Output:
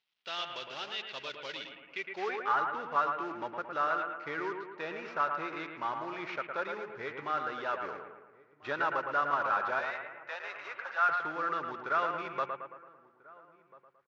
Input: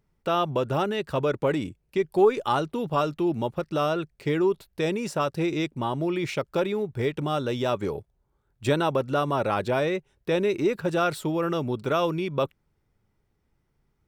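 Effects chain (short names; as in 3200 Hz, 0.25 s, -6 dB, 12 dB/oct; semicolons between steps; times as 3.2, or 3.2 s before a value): CVSD 32 kbps; 9.79–11.09 HPF 680 Hz 24 dB/oct; on a send: analogue delay 0.111 s, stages 2048, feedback 51%, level -5.5 dB; on the sum: band-pass sweep 3300 Hz -> 1400 Hz, 1.68–2.56; outdoor echo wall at 230 m, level -21 dB; gain +2 dB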